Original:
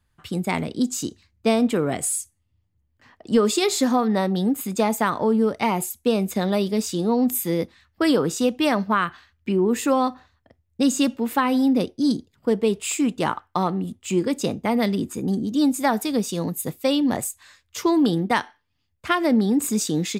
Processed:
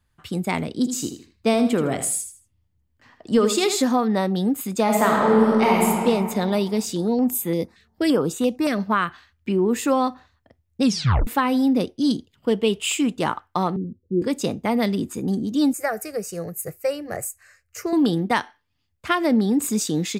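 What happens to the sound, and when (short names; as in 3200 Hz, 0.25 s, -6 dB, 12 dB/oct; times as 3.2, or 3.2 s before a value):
0.72–3.82 feedback echo 79 ms, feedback 27%, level -9 dB
4.83–5.86 reverb throw, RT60 2.4 s, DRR -3 dB
6.85–8.8 stepped notch 8.8 Hz 900–5200 Hz
10.83 tape stop 0.44 s
11.96–13.03 bell 3000 Hz +11.5 dB 0.37 oct
13.76–14.22 rippled Chebyshev low-pass 530 Hz, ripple 3 dB
15.73–17.93 fixed phaser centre 950 Hz, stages 6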